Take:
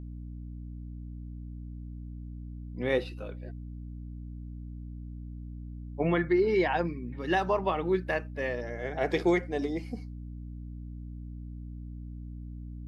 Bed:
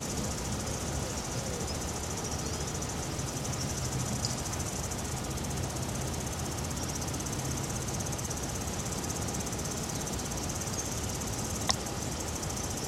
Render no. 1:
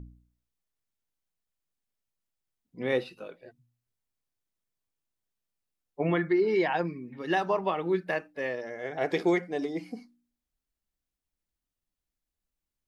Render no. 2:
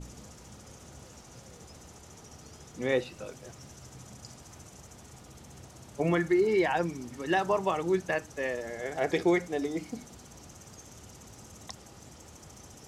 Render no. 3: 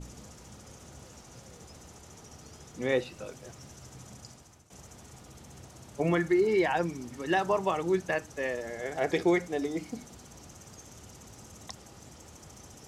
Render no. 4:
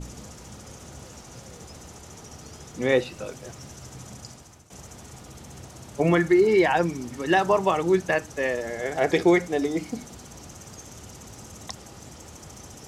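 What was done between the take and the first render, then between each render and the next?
hum removal 60 Hz, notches 5
mix in bed −15.5 dB
0:04.17–0:04.70: fade out, to −15.5 dB
level +6.5 dB

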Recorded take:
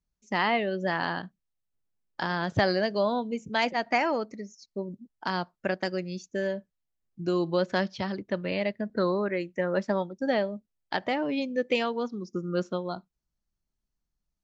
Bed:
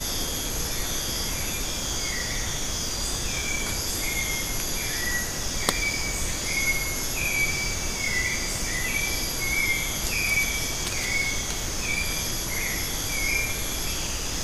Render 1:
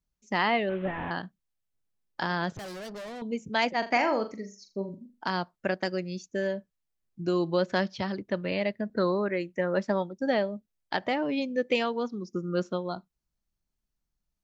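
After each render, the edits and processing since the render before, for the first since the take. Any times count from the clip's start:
0:00.69–0:01.11: linear delta modulator 16 kbit/s, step −39.5 dBFS
0:02.56–0:03.22: tube saturation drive 38 dB, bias 0.55
0:03.78–0:05.24: flutter between parallel walls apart 7 metres, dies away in 0.29 s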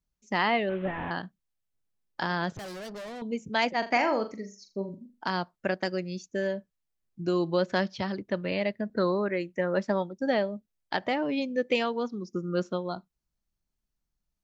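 no processing that can be heard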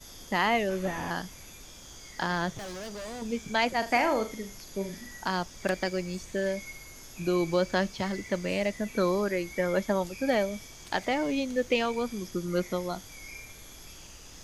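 mix in bed −19 dB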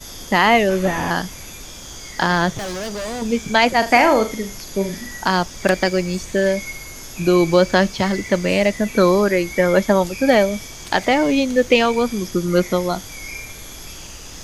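level +12 dB
brickwall limiter −1 dBFS, peak gain reduction 1.5 dB

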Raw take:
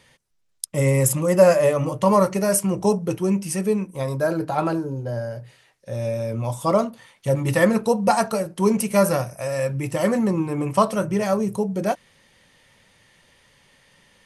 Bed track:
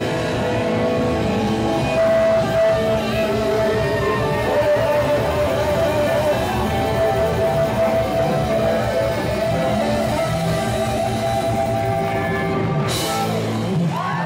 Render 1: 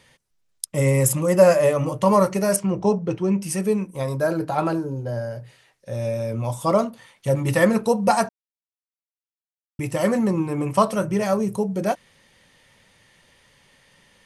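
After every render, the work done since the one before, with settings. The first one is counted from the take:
0:02.56–0:03.42: high-frequency loss of the air 130 metres
0:08.29–0:09.79: silence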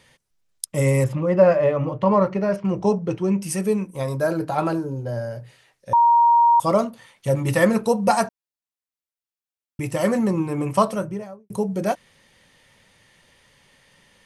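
0:01.04–0:02.65: high-frequency loss of the air 310 metres
0:05.93–0:06.60: beep over 940 Hz −11.5 dBFS
0:10.75–0:11.50: fade out and dull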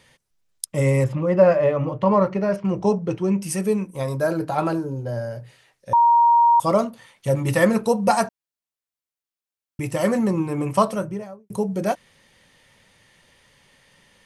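0:00.73–0:01.20: high-shelf EQ 9,500 Hz −12 dB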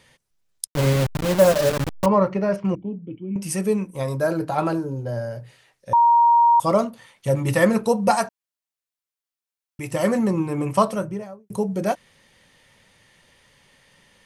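0:00.67–0:02.06: hold until the input has moved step −19 dBFS
0:02.75–0:03.36: formant resonators in series i
0:08.16–0:09.91: low-shelf EQ 440 Hz −6.5 dB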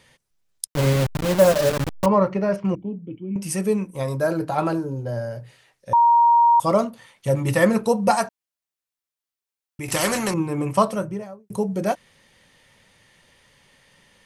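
0:09.88–0:10.34: every bin compressed towards the loudest bin 2 to 1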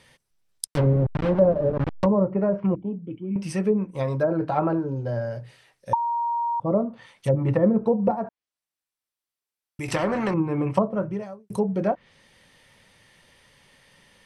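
treble cut that deepens with the level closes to 520 Hz, closed at −15.5 dBFS
notch filter 6,800 Hz, Q 11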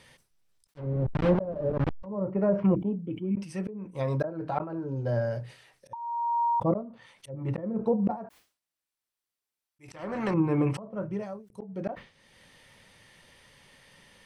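volume swells 553 ms
level that may fall only so fast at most 140 dB per second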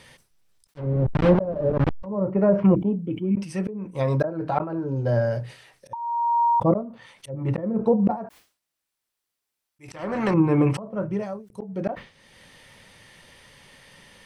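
level +6 dB

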